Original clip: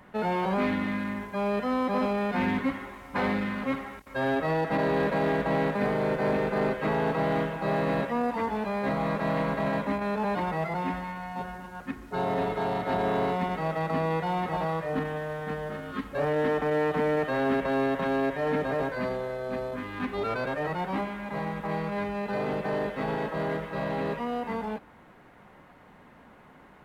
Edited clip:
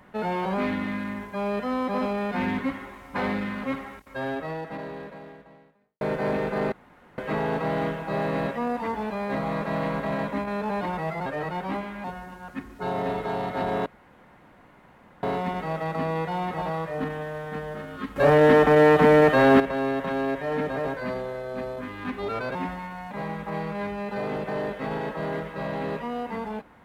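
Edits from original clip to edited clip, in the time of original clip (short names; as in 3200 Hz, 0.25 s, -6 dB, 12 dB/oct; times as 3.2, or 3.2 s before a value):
3.92–6.01 fade out quadratic
6.72 insert room tone 0.46 s
10.8–11.36 swap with 20.5–21.28
13.18 insert room tone 1.37 s
16.11–17.55 gain +10 dB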